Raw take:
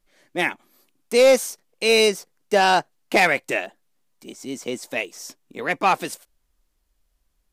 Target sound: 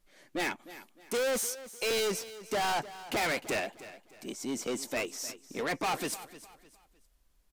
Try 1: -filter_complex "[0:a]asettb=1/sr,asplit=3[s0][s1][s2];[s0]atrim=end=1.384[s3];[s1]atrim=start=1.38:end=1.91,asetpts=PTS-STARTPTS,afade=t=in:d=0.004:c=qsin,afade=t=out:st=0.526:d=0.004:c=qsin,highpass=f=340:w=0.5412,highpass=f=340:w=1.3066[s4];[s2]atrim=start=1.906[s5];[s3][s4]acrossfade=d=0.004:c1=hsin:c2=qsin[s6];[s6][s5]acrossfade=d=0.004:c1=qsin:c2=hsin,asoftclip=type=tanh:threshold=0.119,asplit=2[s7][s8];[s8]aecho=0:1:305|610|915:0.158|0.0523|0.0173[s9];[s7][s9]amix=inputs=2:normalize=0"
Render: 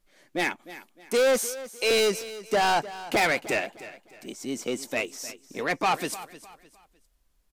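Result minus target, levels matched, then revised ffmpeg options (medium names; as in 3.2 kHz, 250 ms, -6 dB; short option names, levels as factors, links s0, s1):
saturation: distortion -6 dB
-filter_complex "[0:a]asettb=1/sr,asplit=3[s0][s1][s2];[s0]atrim=end=1.384[s3];[s1]atrim=start=1.38:end=1.91,asetpts=PTS-STARTPTS,afade=t=in:d=0.004:c=qsin,afade=t=out:st=0.526:d=0.004:c=qsin,highpass=f=340:w=0.5412,highpass=f=340:w=1.3066[s4];[s2]atrim=start=1.906[s5];[s3][s4]acrossfade=d=0.004:c1=hsin:c2=qsin[s6];[s6][s5]acrossfade=d=0.004:c1=qsin:c2=hsin,asoftclip=type=tanh:threshold=0.0398,asplit=2[s7][s8];[s8]aecho=0:1:305|610|915:0.158|0.0523|0.0173[s9];[s7][s9]amix=inputs=2:normalize=0"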